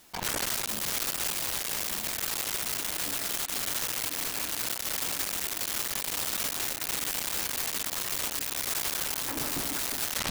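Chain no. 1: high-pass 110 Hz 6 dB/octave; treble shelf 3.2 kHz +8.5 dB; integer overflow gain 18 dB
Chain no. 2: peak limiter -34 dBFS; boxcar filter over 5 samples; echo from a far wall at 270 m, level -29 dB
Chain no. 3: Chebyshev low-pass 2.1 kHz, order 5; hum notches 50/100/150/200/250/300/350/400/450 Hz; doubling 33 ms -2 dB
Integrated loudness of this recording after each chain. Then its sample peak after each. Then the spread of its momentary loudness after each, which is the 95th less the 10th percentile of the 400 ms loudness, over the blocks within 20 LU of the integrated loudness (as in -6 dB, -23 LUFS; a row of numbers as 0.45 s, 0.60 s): -23.0 LUFS, -47.5 LUFS, -38.5 LUFS; -18.0 dBFS, -34.5 dBFS, -21.0 dBFS; 1 LU, 2 LU, 3 LU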